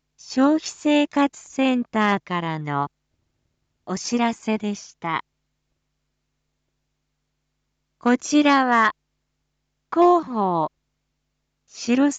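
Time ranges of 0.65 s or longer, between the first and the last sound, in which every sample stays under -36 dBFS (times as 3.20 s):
2.87–3.87 s
5.20–8.03 s
8.91–9.92 s
10.67–11.75 s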